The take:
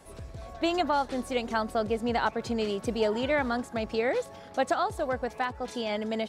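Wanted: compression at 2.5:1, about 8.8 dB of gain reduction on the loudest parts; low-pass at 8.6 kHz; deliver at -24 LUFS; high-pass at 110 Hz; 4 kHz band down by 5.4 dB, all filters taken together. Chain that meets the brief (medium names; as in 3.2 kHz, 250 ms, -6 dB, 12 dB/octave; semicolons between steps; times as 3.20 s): high-pass 110 Hz; low-pass 8.6 kHz; peaking EQ 4 kHz -7.5 dB; compression 2.5:1, threshold -36 dBFS; trim +13.5 dB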